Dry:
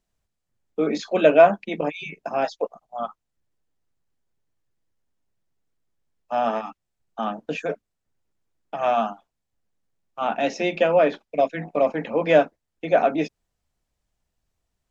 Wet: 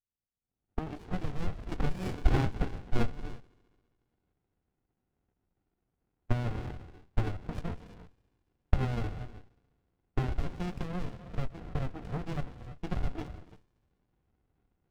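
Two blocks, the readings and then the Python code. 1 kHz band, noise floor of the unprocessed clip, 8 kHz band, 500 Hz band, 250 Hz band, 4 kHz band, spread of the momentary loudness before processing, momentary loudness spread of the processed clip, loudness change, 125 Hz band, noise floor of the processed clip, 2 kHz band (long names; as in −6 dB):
−18.0 dB, −80 dBFS, can't be measured, −22.0 dB, −9.0 dB, −12.0 dB, 15 LU, 14 LU, −13.5 dB, +6.5 dB, −84 dBFS, −15.0 dB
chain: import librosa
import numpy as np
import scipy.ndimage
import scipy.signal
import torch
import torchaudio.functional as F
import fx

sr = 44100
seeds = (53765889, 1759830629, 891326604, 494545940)

y = fx.recorder_agc(x, sr, target_db=-7.0, rise_db_per_s=36.0, max_gain_db=30)
y = fx.env_lowpass(y, sr, base_hz=930.0, full_db=-15.0)
y = fx.spec_box(y, sr, start_s=1.72, length_s=1.31, low_hz=700.0, high_hz=3400.0, gain_db=11)
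y = fx.vowel_filter(y, sr, vowel='a')
y = 10.0 ** (-1.0 / 20.0) * np.tanh(y / 10.0 ** (-1.0 / 20.0))
y = fx.echo_wet_highpass(y, sr, ms=69, feedback_pct=78, hz=1700.0, wet_db=-18)
y = fx.rev_gated(y, sr, seeds[0], gate_ms=360, shape='rising', drr_db=11.5)
y = fx.running_max(y, sr, window=65)
y = y * 10.0 ** (-4.0 / 20.0)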